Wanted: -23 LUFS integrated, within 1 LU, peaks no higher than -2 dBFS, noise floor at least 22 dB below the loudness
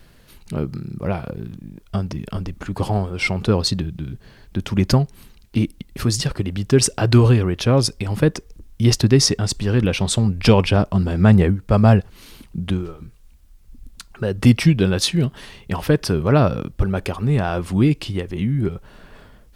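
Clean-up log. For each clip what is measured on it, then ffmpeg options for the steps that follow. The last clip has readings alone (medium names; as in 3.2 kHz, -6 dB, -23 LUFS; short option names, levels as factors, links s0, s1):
loudness -19.5 LUFS; peak level -2.0 dBFS; loudness target -23.0 LUFS
-> -af "volume=0.668"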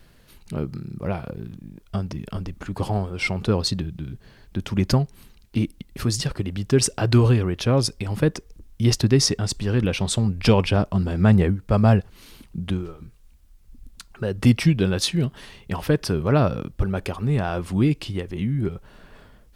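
loudness -23.0 LUFS; peak level -5.5 dBFS; noise floor -53 dBFS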